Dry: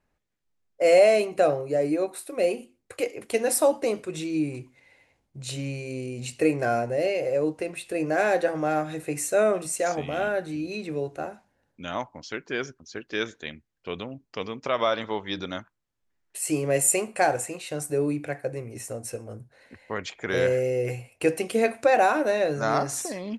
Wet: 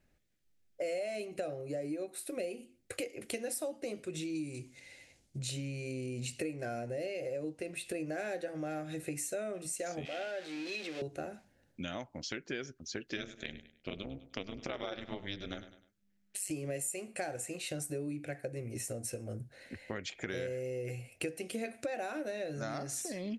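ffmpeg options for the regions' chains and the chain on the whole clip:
-filter_complex "[0:a]asettb=1/sr,asplit=3[a][b][c];[a]atrim=end=4.354[d];[b]atrim=start=4.35:end=5.39,asetpts=PTS-STARTPTS,afade=t=in:d=0.004:c=qsin,afade=t=out:st=1.036:d=0.004:c=qsin,lowpass=9.1k,bass=f=250:g=-1,treble=f=4k:g=12[e];[c]atrim=start=5.386[f];[d][e]acrossfade=d=0.004:c1=hsin:c2=qsin[g];[g][f]acrossfade=d=0.004:c1=qsin:c2=hsin,asettb=1/sr,asplit=3[h][i][j];[h]atrim=end=10.054[k];[i]atrim=start=10.05:end=11.02,asetpts=PTS-STARTPTS,afade=t=in:d=0.004:c=qsin,afade=t=out:st=0.966:d=0.004:c=qsin,aeval=exprs='val(0)+0.5*0.0282*sgn(val(0))':c=same,highpass=590,lowpass=4.4k,equalizer=f=1.2k:w=1.1:g=-5.5[l];[j]atrim=start=11.016[m];[k][l]acrossfade=d=0.004:c1=hsin:c2=qsin[n];[n][m]acrossfade=d=0.004:c1=qsin:c2=hsin,asettb=1/sr,asplit=3[o][p][q];[o]atrim=end=13.174[r];[p]atrim=start=13.17:end=16.51,asetpts=PTS-STARTPTS,afade=t=in:d=0.004:c=qsin,afade=t=out:st=3.336:d=0.004:c=qsin,tremolo=f=200:d=0.947,aecho=1:1:101|202|303:0.158|0.0523|0.0173,atrim=end_sample=147294[s];[q]atrim=start=16.506[t];[r][s]acrossfade=d=0.004:c1=hsin:c2=qsin[u];[u][t]acrossfade=d=0.004:c1=qsin:c2=hsin,equalizer=f=1k:t=o:w=0.85:g=-12,bandreject=f=440:w=12,acompressor=threshold=-40dB:ratio=6,volume=3.5dB"

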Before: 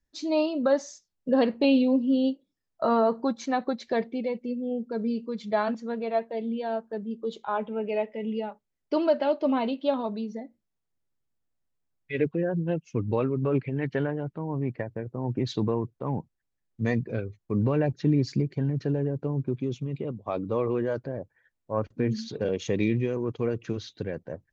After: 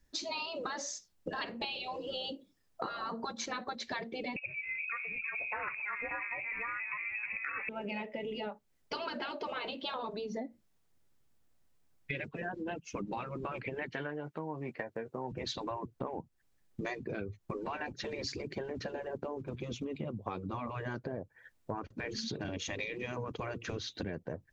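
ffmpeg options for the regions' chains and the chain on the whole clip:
-filter_complex "[0:a]asettb=1/sr,asplit=3[a][b][c];[a]atrim=end=4.364[d];[b]atrim=start=4.36:end=7.69,asetpts=PTS-STARTPTS,afade=t=in:d=0.004:c=qsin,afade=t=out:st=3.326:d=0.004:c=qsin,acontrast=82,asplit=6[e][f][g][h][i][j];[f]adelay=325,afreqshift=56,volume=-22dB[k];[g]adelay=650,afreqshift=112,volume=-25.9dB[l];[h]adelay=975,afreqshift=168,volume=-29.8dB[m];[i]adelay=1300,afreqshift=224,volume=-33.6dB[n];[j]adelay=1625,afreqshift=280,volume=-37.5dB[o];[e][k][l][m][n][o]amix=inputs=6:normalize=0,atrim=end_sample=146853,lowpass=f=2.4k:t=q:w=0.5098,lowpass=f=2.4k:t=q:w=0.6013,lowpass=f=2.4k:t=q:w=0.9,lowpass=f=2.4k:t=q:w=2.563,afreqshift=-2800[p];[c]atrim=start=7.686[q];[d][p]acrossfade=d=0.004:c1=hsin:c2=qsin[r];[r][q]acrossfade=d=0.004:c1=qsin:c2=hsin,asettb=1/sr,asplit=3[s][t][u];[s]atrim=end=13.934[v];[t]atrim=start=13.93:end=15.32,asetpts=PTS-STARTPTS,afade=t=in:d=0.004:c=qsin,afade=t=out:st=1.386:d=0.004:c=qsin,highpass=f=810:p=1,asplit=2[w][x];[x]adelay=13,volume=-7dB[y];[w][y]amix=inputs=2:normalize=0,atrim=end_sample=61299[z];[u]atrim=start=15.316[aa];[v][z]acrossfade=d=0.004:c1=hsin:c2=qsin[ab];[ab][aa]acrossfade=d=0.004:c1=qsin:c2=hsin,afftfilt=real='re*lt(hypot(re,im),0.158)':imag='im*lt(hypot(re,im),0.158)':win_size=1024:overlap=0.75,acompressor=threshold=-46dB:ratio=6,volume=10dB"

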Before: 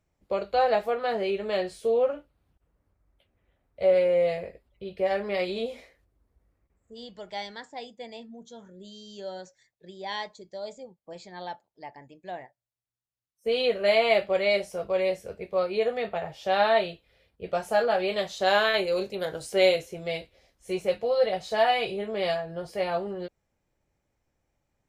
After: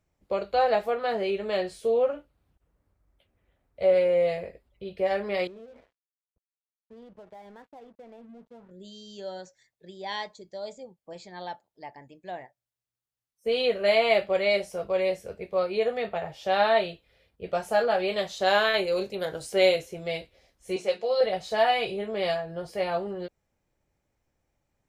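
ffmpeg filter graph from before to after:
-filter_complex "[0:a]asettb=1/sr,asplit=3[a][b][c];[a]atrim=end=5.474[d];[b]atrim=start=5.47:end=8.71,asetpts=PTS-STARTPTS,afade=t=in:d=0.004:c=qsin,afade=t=out:st=3.236:d=0.004:c=qsin,lowpass=1.1k,acompressor=threshold=-42dB:ratio=6:attack=3.2:release=140:knee=1:detection=peak,aeval=exprs='sgn(val(0))*max(abs(val(0))-0.00106,0)':c=same[e];[c]atrim=start=8.706[f];[d][e]acrossfade=d=0.004:c1=hsin:c2=qsin[g];[g][f]acrossfade=d=0.004:c1=qsin:c2=hsin,asettb=1/sr,asplit=3[h][i][j];[h]atrim=end=20.764[k];[i]atrim=start=20.76:end=21.21,asetpts=PTS-STARTPTS,afade=t=in:d=0.004:c=qsin,afade=t=out:st=0.446:d=0.004:c=qsin,highpass=110,lowpass=5.3k,bass=f=250:g=-9,treble=f=4k:g=11,bandreject=f=60:t=h:w=6,bandreject=f=120:t=h:w=6,bandreject=f=180:t=h:w=6,bandreject=f=240:t=h:w=6,bandreject=f=300:t=h:w=6,bandreject=f=360:t=h:w=6,bandreject=f=420:t=h:w=6[l];[j]atrim=start=21.206[m];[k][l]acrossfade=d=0.004:c1=hsin:c2=qsin[n];[n][m]acrossfade=d=0.004:c1=qsin:c2=hsin"

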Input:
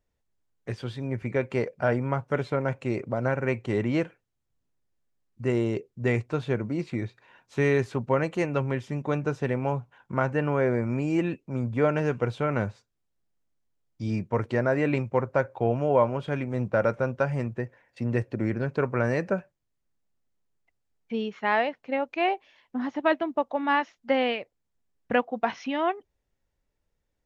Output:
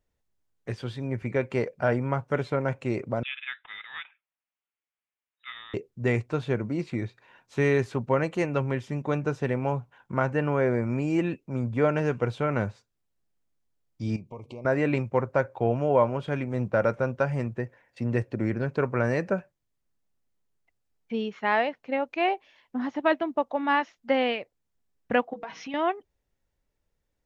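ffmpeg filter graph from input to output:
-filter_complex "[0:a]asettb=1/sr,asplit=3[a][b][c];[a]atrim=end=3.234[d];[b]atrim=start=3.23:end=5.74,asetpts=PTS-STARTPTS,afade=t=in:d=0.004:c=qsin,afade=t=out:st=2.506:d=0.004:c=qsin,highpass=1.4k,lowpass=f=3.4k:t=q:w=0.5098,lowpass=f=3.4k:t=q:w=0.6013,lowpass=f=3.4k:t=q:w=0.9,lowpass=f=3.4k:t=q:w=2.563,afreqshift=-4000[e];[c]atrim=start=5.736[f];[d][e]acrossfade=d=0.004:c1=hsin:c2=qsin[g];[g][f]acrossfade=d=0.004:c1=qsin:c2=hsin,asettb=1/sr,asplit=3[h][i][j];[h]atrim=end=14.164[k];[i]atrim=start=14.16:end=14.65,asetpts=PTS-STARTPTS,afade=t=in:d=0.004:c=qsin,afade=t=out:st=0.486:d=0.004:c=qsin,bandreject=f=134.6:t=h:w=4,bandreject=f=269.2:t=h:w=4,acompressor=threshold=-41dB:ratio=3:attack=3.2:release=140:knee=1:detection=peak,asuperstop=centerf=1600:order=20:qfactor=1.7[l];[j]atrim=start=14.646[m];[k][l]acrossfade=d=0.004:c1=hsin:c2=qsin[n];[n][m]acrossfade=d=0.004:c1=qsin:c2=hsin,asettb=1/sr,asplit=3[o][p][q];[o]atrim=end=25.334[r];[p]atrim=start=25.33:end=25.74,asetpts=PTS-STARTPTS,afade=t=in:d=0.004:c=qsin,afade=t=out:st=0.406:d=0.004:c=qsin,bandreject=f=60:t=h:w=6,bandreject=f=120:t=h:w=6,bandreject=f=180:t=h:w=6,bandreject=f=240:t=h:w=6,bandreject=f=300:t=h:w=6,bandreject=f=360:t=h:w=6,bandreject=f=420:t=h:w=6,bandreject=f=480:t=h:w=6,aecho=1:1:6.3:0.65,atrim=end_sample=18081,acompressor=threshold=-35dB:ratio=4:attack=3.2:release=140:knee=1:detection=peak[s];[q]atrim=start=25.736[t];[r][s]acrossfade=d=0.004:c1=hsin:c2=qsin[u];[u][t]acrossfade=d=0.004:c1=qsin:c2=hsin"

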